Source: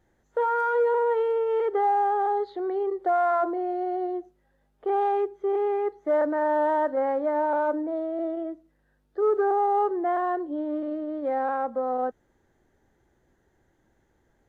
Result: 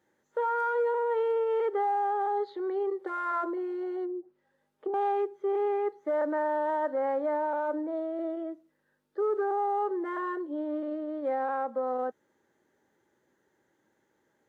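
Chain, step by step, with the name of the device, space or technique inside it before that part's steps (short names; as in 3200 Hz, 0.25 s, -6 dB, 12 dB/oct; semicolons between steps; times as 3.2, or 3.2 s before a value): PA system with an anti-feedback notch (HPF 170 Hz 12 dB/oct; Butterworth band-stop 710 Hz, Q 6.7; limiter -20 dBFS, peak gain reduction 4 dB); low shelf 210 Hz -5.5 dB; 4.04–4.94 treble ducked by the level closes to 420 Hz, closed at -29.5 dBFS; gain -1.5 dB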